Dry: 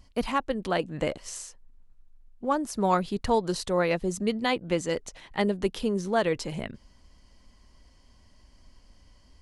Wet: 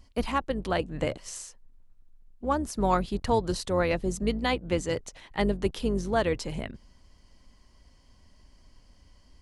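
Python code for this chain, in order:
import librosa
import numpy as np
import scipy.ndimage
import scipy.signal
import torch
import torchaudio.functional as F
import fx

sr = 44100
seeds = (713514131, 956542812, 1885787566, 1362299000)

y = fx.octave_divider(x, sr, octaves=2, level_db=-3.0)
y = y * 10.0 ** (-1.0 / 20.0)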